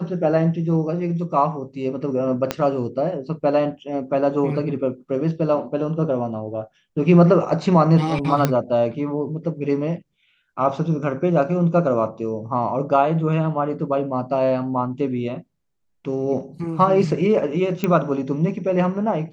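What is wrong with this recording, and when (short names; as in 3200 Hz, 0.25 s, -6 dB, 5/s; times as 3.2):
2.51 pop -6 dBFS
8.45 pop -4 dBFS
17.84 pop -9 dBFS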